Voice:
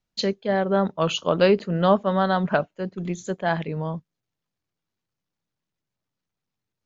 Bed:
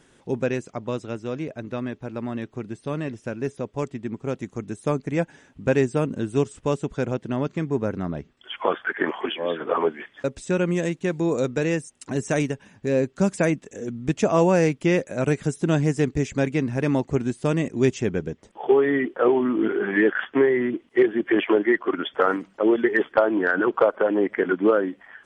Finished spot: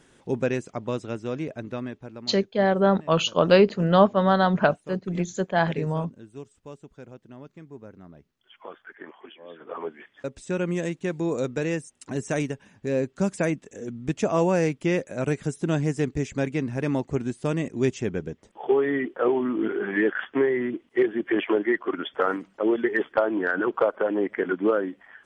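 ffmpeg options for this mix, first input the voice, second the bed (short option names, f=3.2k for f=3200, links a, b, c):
-filter_complex "[0:a]adelay=2100,volume=1.5dB[a];[1:a]volume=14.5dB,afade=t=out:st=1.56:d=0.86:silence=0.125893,afade=t=in:st=9.47:d=1.26:silence=0.177828[b];[a][b]amix=inputs=2:normalize=0"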